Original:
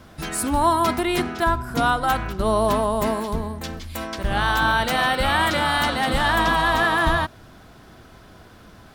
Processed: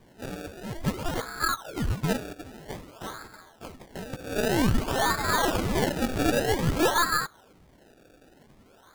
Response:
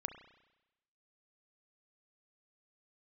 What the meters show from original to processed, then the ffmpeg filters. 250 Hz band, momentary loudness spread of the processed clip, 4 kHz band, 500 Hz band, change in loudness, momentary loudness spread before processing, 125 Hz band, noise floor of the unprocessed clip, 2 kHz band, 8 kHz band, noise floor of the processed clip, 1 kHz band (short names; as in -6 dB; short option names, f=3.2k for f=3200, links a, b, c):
-3.5 dB, 17 LU, -7.5 dB, -5.5 dB, -6.0 dB, 10 LU, -2.5 dB, -47 dBFS, -9.5 dB, -2.0 dB, -57 dBFS, -10.0 dB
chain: -af "afftfilt=real='re*between(b*sr/4096,1300,3400)':imag='im*between(b*sr/4096,1300,3400)':win_size=4096:overlap=0.75,acrusher=samples=29:mix=1:aa=0.000001:lfo=1:lforange=29:lforate=0.52,aeval=exprs='0.2*(cos(1*acos(clip(val(0)/0.2,-1,1)))-cos(1*PI/2))+0.02*(cos(4*acos(clip(val(0)/0.2,-1,1)))-cos(4*PI/2))':c=same"